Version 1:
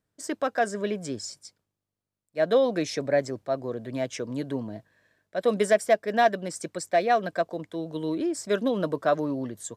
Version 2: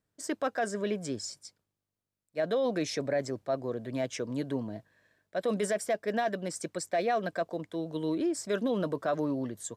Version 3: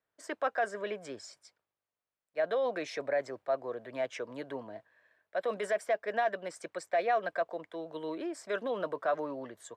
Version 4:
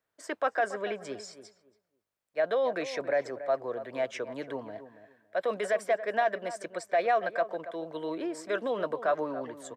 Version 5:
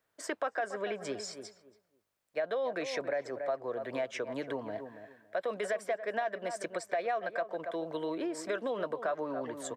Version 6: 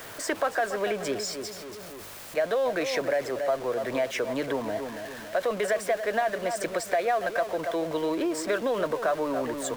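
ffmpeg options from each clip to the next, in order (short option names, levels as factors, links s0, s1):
-af "alimiter=limit=0.112:level=0:latency=1:release=13,volume=0.794"
-filter_complex "[0:a]acrossover=split=470 3000:gain=0.126 1 0.2[s0][s1][s2];[s0][s1][s2]amix=inputs=3:normalize=0,volume=1.26"
-filter_complex "[0:a]asplit=2[s0][s1];[s1]adelay=280,lowpass=f=1400:p=1,volume=0.251,asplit=2[s2][s3];[s3]adelay=280,lowpass=f=1400:p=1,volume=0.22,asplit=2[s4][s5];[s5]adelay=280,lowpass=f=1400:p=1,volume=0.22[s6];[s0][s2][s4][s6]amix=inputs=4:normalize=0,volume=1.41"
-af "acompressor=threshold=0.0126:ratio=3,volume=1.68"
-af "aeval=exprs='val(0)+0.5*0.00841*sgn(val(0))':c=same,volume=2"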